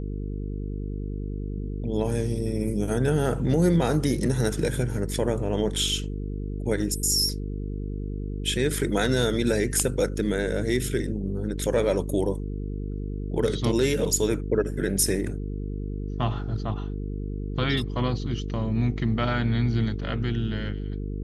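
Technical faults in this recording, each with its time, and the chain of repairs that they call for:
mains buzz 50 Hz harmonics 9 −31 dBFS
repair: hum removal 50 Hz, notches 9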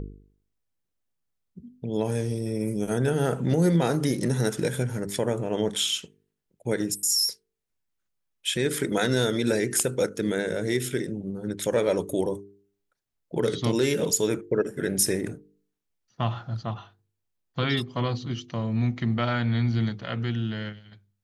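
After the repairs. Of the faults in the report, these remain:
none of them is left

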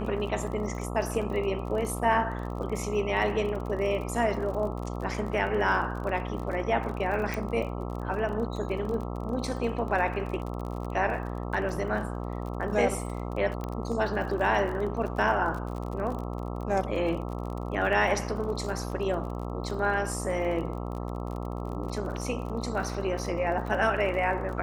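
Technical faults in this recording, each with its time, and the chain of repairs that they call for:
mains buzz 60 Hz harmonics 22 −34 dBFS
surface crackle 35 per second −35 dBFS
0:07.34: click
0:13.64: click −21 dBFS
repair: click removal
hum removal 60 Hz, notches 22

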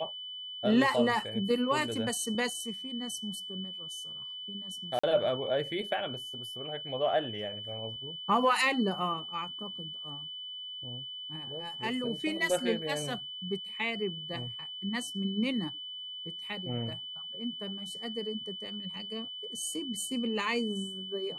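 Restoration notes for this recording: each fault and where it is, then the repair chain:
whistle 3,000 Hz −39 dBFS
0:04.99–0:05.04: drop-out 45 ms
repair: notch filter 3,000 Hz, Q 30
repair the gap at 0:04.99, 45 ms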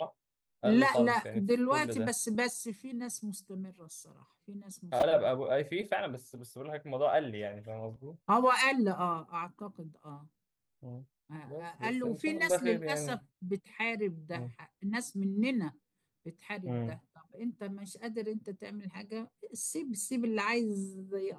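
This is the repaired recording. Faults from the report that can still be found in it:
none of them is left

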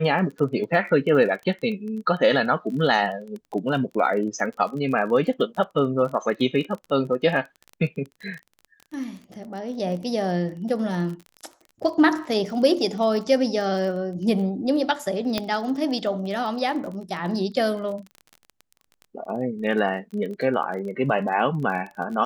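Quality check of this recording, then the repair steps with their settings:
surface crackle 27 per second −32 dBFS
0:15.38: click −9 dBFS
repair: click removal

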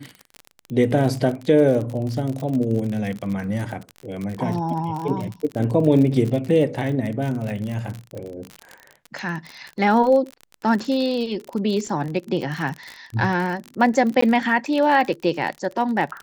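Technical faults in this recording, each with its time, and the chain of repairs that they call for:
surface crackle 39 per second −26 dBFS
0:14.21–0:14.22: drop-out 14 ms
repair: click removal
repair the gap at 0:14.21, 14 ms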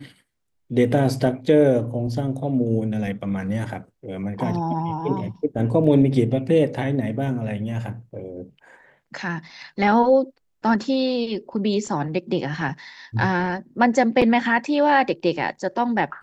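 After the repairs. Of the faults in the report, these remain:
none of them is left

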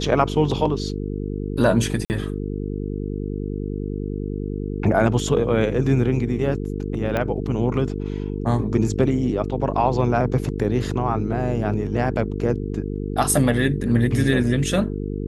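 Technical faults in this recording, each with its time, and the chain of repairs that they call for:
mains buzz 50 Hz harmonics 9 −27 dBFS
0:02.05–0:02.10: drop-out 49 ms
0:07.17: click −11 dBFS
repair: click removal
hum removal 50 Hz, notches 9
repair the gap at 0:02.05, 49 ms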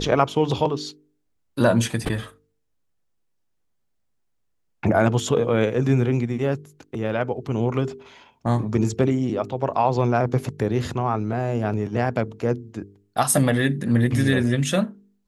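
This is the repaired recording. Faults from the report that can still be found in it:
0:07.17: click

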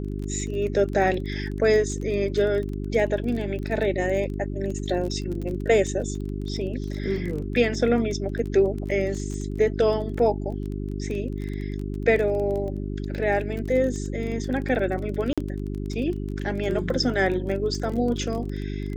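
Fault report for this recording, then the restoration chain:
surface crackle 21 per second −30 dBFS
mains hum 50 Hz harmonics 8 −30 dBFS
0:15.33–0:15.38: drop-out 46 ms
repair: click removal
hum removal 50 Hz, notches 8
repair the gap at 0:15.33, 46 ms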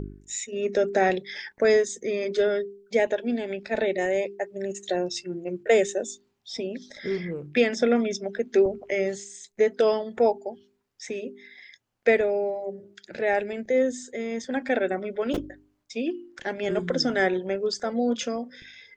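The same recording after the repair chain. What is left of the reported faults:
none of them is left

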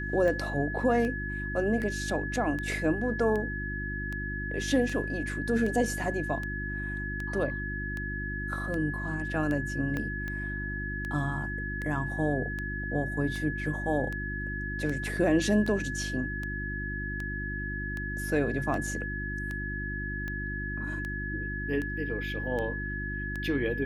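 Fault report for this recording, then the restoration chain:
mains hum 50 Hz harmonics 7 −36 dBFS
scratch tick 78 rpm −23 dBFS
whistle 1,700 Hz −35 dBFS
0:09.97: click −20 dBFS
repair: click removal
hum removal 50 Hz, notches 7
notch filter 1,700 Hz, Q 30

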